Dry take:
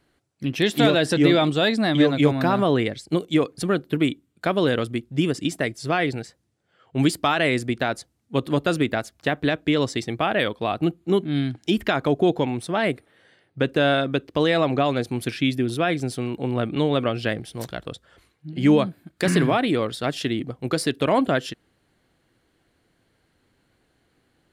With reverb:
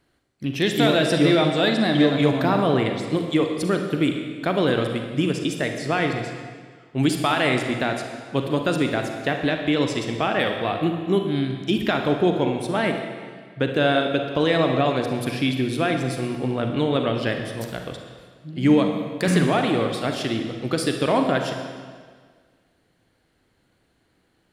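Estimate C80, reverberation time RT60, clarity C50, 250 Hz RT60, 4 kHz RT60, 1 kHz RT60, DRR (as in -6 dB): 6.5 dB, 1.7 s, 4.5 dB, 1.7 s, 1.5 s, 1.7 s, 4.0 dB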